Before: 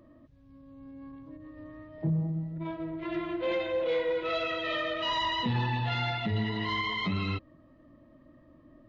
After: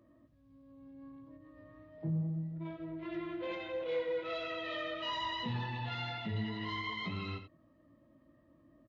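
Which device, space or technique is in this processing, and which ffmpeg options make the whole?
slapback doubling: -filter_complex "[0:a]asplit=3[s0][s1][s2];[s1]adelay=18,volume=0.376[s3];[s2]adelay=87,volume=0.299[s4];[s0][s3][s4]amix=inputs=3:normalize=0,highpass=53,volume=0.376"

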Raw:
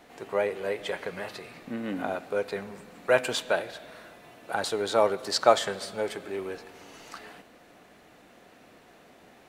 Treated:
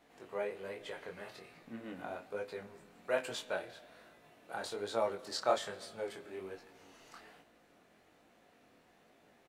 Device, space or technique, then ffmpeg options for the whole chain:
double-tracked vocal: -filter_complex "[0:a]asplit=2[s0][s1];[s1]adelay=32,volume=0.2[s2];[s0][s2]amix=inputs=2:normalize=0,flanger=delay=17.5:depth=6.9:speed=1.2,volume=0.376"

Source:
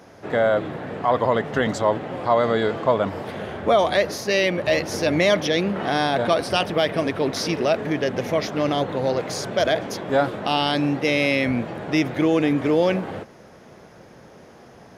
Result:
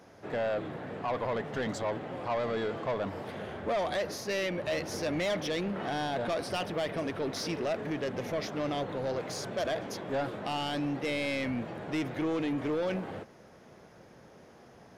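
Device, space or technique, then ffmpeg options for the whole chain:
saturation between pre-emphasis and de-emphasis: -af "highshelf=f=6500:g=7,asoftclip=type=tanh:threshold=0.126,highshelf=f=6500:g=-7,volume=0.398"

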